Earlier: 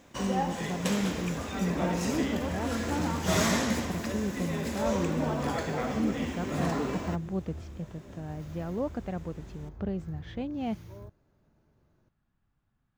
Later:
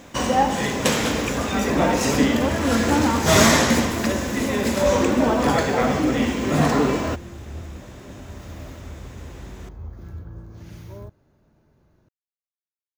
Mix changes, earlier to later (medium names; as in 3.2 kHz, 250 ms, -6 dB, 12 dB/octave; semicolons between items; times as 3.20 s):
speech: muted; first sound +12.0 dB; second sound +7.5 dB